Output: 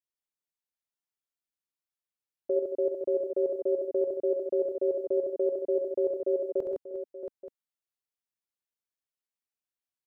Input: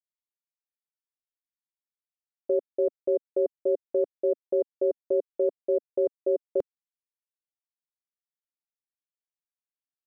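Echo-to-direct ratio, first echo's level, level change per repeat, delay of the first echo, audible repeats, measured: -0.5 dB, -6.5 dB, no steady repeat, 67 ms, 6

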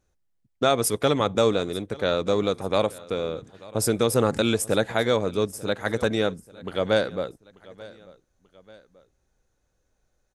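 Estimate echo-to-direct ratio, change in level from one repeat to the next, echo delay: -20.0 dB, -6.5 dB, 0.888 s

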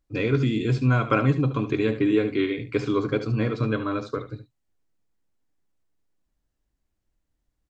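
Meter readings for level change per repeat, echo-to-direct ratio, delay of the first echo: no steady repeat, -11.5 dB, 73 ms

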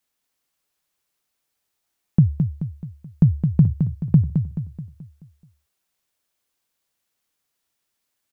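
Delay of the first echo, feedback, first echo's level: 0.215 s, 47%, -6.5 dB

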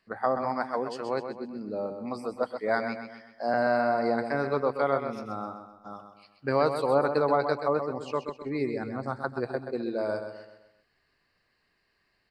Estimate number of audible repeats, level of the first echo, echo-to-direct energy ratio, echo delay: 4, -8.0 dB, -7.0 dB, 0.129 s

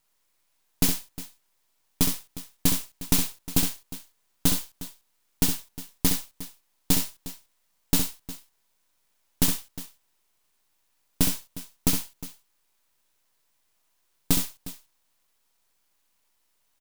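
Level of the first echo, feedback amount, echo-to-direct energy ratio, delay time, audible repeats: -6.5 dB, no steady repeat, -6.0 dB, 65 ms, 2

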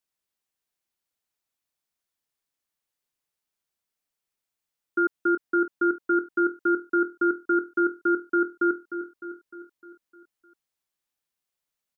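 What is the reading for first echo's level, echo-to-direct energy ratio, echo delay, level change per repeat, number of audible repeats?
-10.5 dB, -9.0 dB, 0.304 s, -5.0 dB, 5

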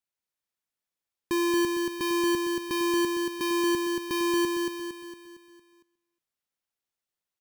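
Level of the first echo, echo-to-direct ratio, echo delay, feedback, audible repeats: -3.5 dB, -2.5 dB, 0.229 s, 48%, 5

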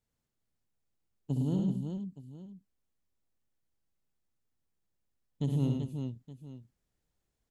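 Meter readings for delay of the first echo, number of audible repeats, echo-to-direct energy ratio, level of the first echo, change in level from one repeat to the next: 63 ms, 5, -1.0 dB, -7.5 dB, no steady repeat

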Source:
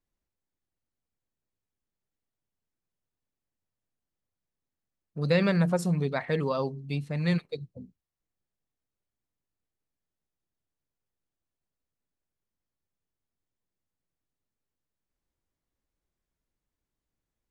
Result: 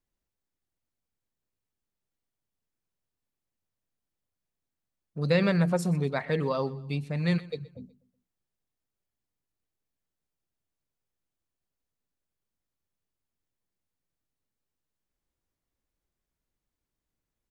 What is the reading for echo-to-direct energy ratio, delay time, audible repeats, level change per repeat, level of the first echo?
-19.0 dB, 0.124 s, 2, -7.5 dB, -20.0 dB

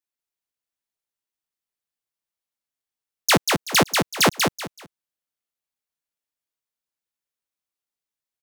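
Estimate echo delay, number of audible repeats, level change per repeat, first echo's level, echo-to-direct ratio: 0.19 s, 3, -12.0 dB, -4.0 dB, -3.5 dB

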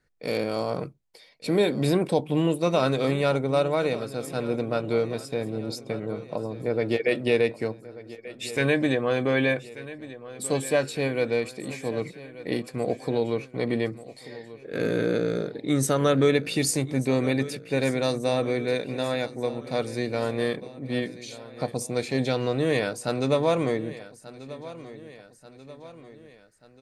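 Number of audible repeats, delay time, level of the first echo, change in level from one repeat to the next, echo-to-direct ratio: 3, 1.186 s, -16.5 dB, -5.5 dB, -15.0 dB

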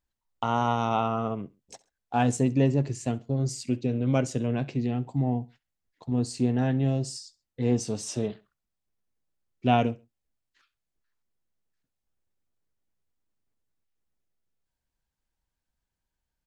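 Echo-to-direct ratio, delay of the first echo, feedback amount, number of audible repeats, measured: -21.0 dB, 66 ms, 33%, 2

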